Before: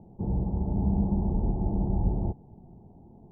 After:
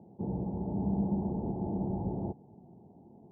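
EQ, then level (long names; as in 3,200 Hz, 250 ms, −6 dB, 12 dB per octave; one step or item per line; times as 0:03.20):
Bessel high-pass filter 190 Hz, order 2
low-pass filter 1,000 Hz 12 dB per octave
0.0 dB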